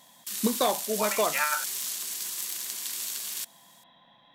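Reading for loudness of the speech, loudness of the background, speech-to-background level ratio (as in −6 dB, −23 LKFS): −28.5 LKFS, −31.0 LKFS, 2.5 dB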